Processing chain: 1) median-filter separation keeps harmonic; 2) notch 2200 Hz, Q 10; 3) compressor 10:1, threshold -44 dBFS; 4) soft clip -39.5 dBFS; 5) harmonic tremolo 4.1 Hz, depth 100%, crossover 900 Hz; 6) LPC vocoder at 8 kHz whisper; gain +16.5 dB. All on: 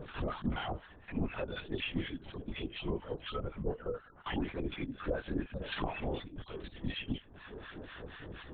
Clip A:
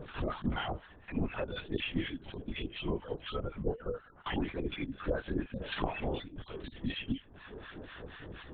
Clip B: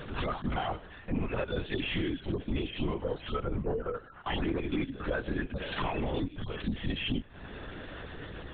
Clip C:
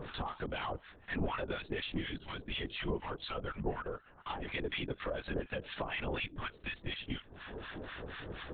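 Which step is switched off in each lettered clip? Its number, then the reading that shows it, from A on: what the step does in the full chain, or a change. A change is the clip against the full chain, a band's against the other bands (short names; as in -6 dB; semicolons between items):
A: 4, distortion -18 dB; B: 5, loudness change +5.0 LU; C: 1, 250 Hz band -5.5 dB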